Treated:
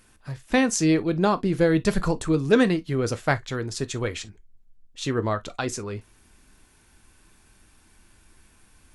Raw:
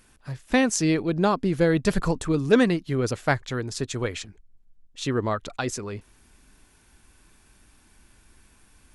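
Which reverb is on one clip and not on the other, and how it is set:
reverb whose tail is shaped and stops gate 80 ms falling, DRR 11.5 dB

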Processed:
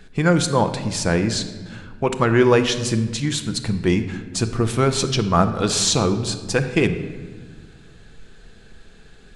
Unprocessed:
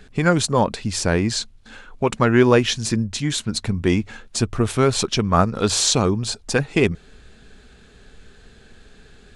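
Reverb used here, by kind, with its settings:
rectangular room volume 1,500 cubic metres, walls mixed, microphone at 0.72 metres
level −1 dB

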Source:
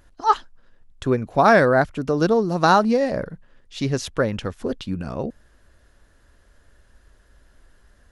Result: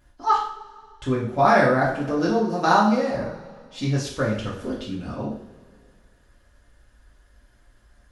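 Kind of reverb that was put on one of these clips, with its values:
coupled-rooms reverb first 0.5 s, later 2.1 s, from −18 dB, DRR −6 dB
level −8.5 dB

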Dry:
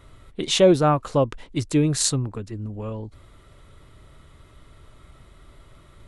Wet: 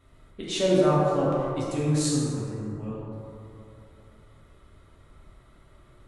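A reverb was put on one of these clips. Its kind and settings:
dense smooth reverb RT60 2.8 s, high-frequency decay 0.35×, DRR −7 dB
level −12 dB

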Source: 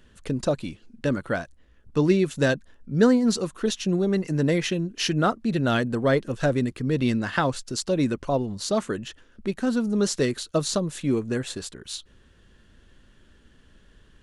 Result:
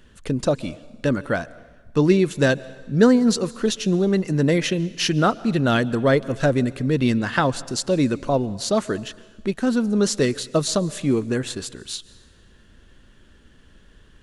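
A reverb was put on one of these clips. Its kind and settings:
dense smooth reverb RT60 1.3 s, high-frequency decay 1×, pre-delay 115 ms, DRR 20 dB
level +3.5 dB

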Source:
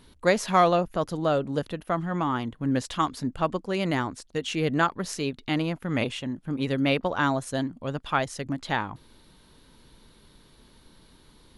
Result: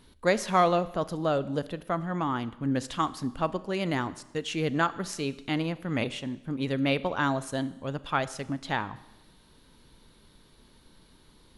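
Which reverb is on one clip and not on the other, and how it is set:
four-comb reverb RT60 0.99 s, combs from 29 ms, DRR 16 dB
level −2.5 dB

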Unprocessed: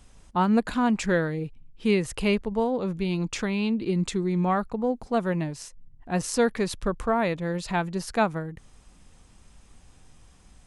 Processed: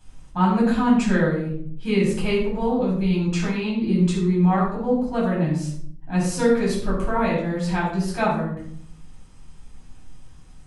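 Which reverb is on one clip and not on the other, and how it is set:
rectangular room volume 920 cubic metres, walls furnished, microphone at 8.4 metres
level −7.5 dB

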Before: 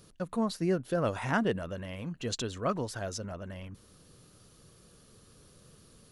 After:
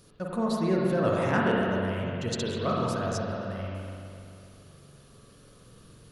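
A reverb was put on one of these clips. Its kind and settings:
spring reverb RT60 2.6 s, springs 42/49 ms, chirp 30 ms, DRR −3.5 dB

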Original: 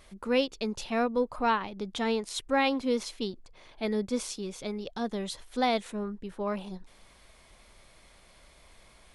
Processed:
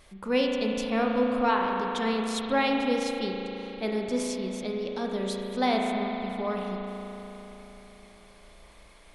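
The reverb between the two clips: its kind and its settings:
spring reverb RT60 3.8 s, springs 36 ms, chirp 40 ms, DRR 0 dB

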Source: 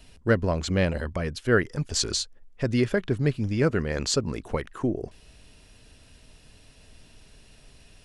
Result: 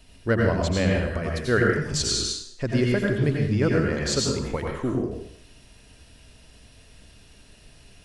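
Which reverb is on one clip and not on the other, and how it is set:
dense smooth reverb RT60 0.65 s, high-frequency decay 0.95×, pre-delay 75 ms, DRR −1.5 dB
level −1.5 dB

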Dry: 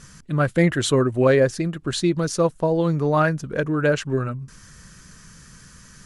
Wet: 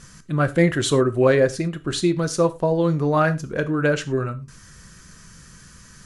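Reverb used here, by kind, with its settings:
reverb whose tail is shaped and stops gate 130 ms falling, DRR 10.5 dB

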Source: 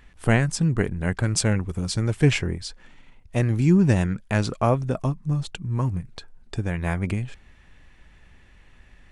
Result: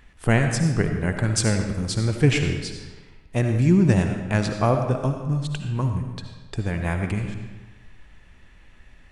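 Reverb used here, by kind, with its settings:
comb and all-pass reverb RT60 1.2 s, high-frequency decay 0.8×, pre-delay 35 ms, DRR 5 dB

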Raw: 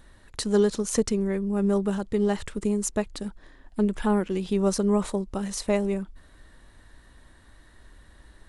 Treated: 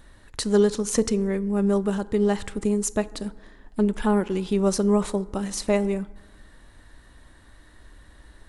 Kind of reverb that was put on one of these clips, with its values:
feedback delay network reverb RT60 1.3 s, low-frequency decay 1×, high-frequency decay 0.4×, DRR 15.5 dB
level +2 dB

